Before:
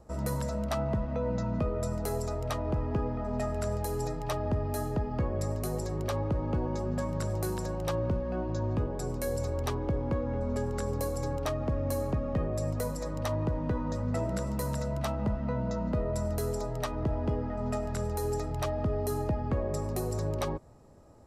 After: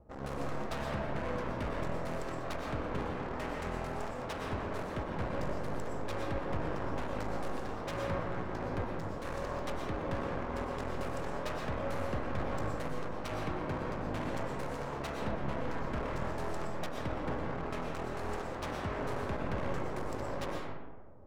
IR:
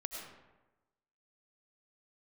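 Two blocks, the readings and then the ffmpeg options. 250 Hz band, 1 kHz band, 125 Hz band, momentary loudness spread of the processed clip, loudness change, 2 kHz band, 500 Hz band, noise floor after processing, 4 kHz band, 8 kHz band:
−5.5 dB, 0.0 dB, −9.0 dB, 3 LU, −5.5 dB, +4.0 dB, −5.0 dB, −40 dBFS, −1.5 dB, −11.0 dB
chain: -filter_complex "[0:a]aeval=exprs='0.0944*(cos(1*acos(clip(val(0)/0.0944,-1,1)))-cos(1*PI/2))+0.0473*(cos(2*acos(clip(val(0)/0.0944,-1,1)))-cos(2*PI/2))+0.0133*(cos(4*acos(clip(val(0)/0.0944,-1,1)))-cos(4*PI/2))+0.0422*(cos(7*acos(clip(val(0)/0.0944,-1,1)))-cos(7*PI/2))':channel_layout=same,adynamicsmooth=sensitivity=6.5:basefreq=1400[link_01];[1:a]atrim=start_sample=2205,asetrate=37044,aresample=44100[link_02];[link_01][link_02]afir=irnorm=-1:irlink=0,volume=-8.5dB"

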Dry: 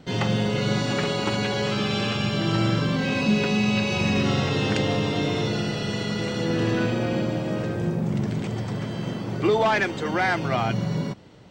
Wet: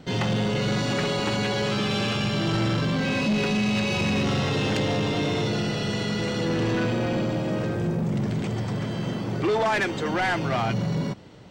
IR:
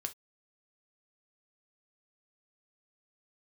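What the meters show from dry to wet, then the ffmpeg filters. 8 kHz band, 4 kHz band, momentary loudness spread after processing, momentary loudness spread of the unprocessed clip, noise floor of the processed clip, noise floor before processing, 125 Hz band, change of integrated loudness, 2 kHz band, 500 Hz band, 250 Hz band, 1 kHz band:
+0.5 dB, −0.5 dB, 4 LU, 6 LU, −30 dBFS, −32 dBFS, −0.5 dB, −1.0 dB, −1.0 dB, −1.0 dB, −1.0 dB, −1.0 dB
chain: -af "asoftclip=type=tanh:threshold=-21dB,volume=2dB"

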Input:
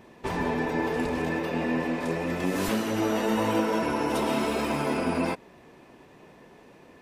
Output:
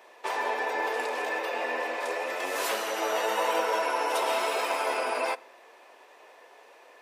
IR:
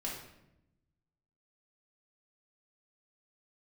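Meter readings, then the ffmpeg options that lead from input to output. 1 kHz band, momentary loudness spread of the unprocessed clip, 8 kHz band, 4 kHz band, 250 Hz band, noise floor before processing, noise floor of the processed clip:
+2.5 dB, 4 LU, +2.5 dB, +2.5 dB, −17.0 dB, −53 dBFS, −54 dBFS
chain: -filter_complex "[0:a]highpass=frequency=510:width=0.5412,highpass=frequency=510:width=1.3066,asplit=2[link_01][link_02];[1:a]atrim=start_sample=2205[link_03];[link_02][link_03]afir=irnorm=-1:irlink=0,volume=-20.5dB[link_04];[link_01][link_04]amix=inputs=2:normalize=0,volume=2dB"

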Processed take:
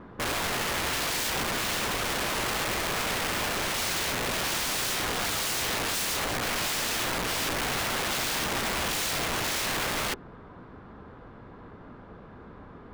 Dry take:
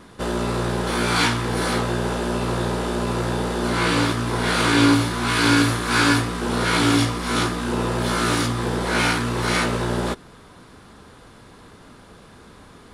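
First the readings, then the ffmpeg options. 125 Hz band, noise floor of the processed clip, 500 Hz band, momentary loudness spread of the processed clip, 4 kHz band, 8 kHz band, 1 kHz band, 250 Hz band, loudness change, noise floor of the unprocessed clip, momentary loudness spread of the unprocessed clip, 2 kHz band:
−15.5 dB, −48 dBFS, −9.5 dB, 1 LU, −3.5 dB, +0.5 dB, −7.5 dB, −16.0 dB, −6.5 dB, −47 dBFS, 7 LU, −6.0 dB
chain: -af "lowpass=1500,aeval=exprs='(mod(16.8*val(0)+1,2)-1)/16.8':channel_layout=same"

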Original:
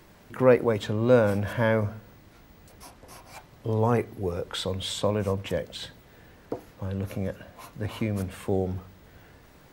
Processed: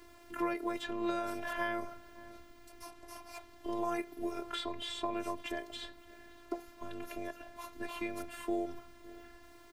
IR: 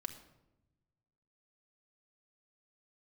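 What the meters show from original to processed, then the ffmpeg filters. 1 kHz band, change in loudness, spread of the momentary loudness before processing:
−5.5 dB, −12.5 dB, 20 LU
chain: -filter_complex "[0:a]asplit=2[link_01][link_02];[link_02]adelay=559.8,volume=-24dB,highshelf=frequency=4000:gain=-12.6[link_03];[link_01][link_03]amix=inputs=2:normalize=0,acrossover=split=430|3200[link_04][link_05][link_06];[link_04]acompressor=threshold=-37dB:ratio=4[link_07];[link_05]acompressor=threshold=-29dB:ratio=4[link_08];[link_06]acompressor=threshold=-49dB:ratio=4[link_09];[link_07][link_08][link_09]amix=inputs=3:normalize=0,afftfilt=real='hypot(re,im)*cos(PI*b)':imag='0':win_size=512:overlap=0.75,volume=1dB"

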